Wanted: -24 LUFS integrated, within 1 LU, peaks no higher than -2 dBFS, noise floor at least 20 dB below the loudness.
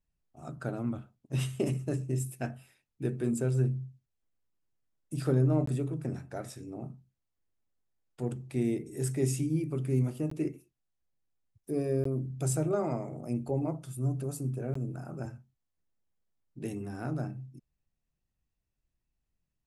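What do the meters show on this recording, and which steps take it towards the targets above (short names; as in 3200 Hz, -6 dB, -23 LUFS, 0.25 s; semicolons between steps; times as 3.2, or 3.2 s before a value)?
dropouts 4; longest dropout 14 ms; loudness -33.0 LUFS; peak -15.5 dBFS; loudness target -24.0 LUFS
-> interpolate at 5.66/10.3/12.04/14.74, 14 ms; gain +9 dB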